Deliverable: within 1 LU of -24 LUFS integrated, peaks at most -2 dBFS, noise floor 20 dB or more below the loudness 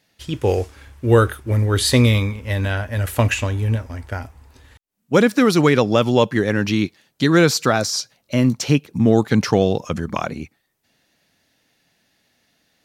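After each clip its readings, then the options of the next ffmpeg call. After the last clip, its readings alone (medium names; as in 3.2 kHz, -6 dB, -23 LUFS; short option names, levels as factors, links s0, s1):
loudness -18.5 LUFS; peak level -2.0 dBFS; loudness target -24.0 LUFS
-> -af "volume=0.531"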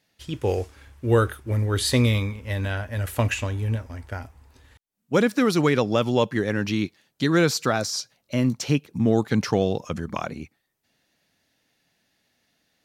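loudness -24.0 LUFS; peak level -7.5 dBFS; noise floor -75 dBFS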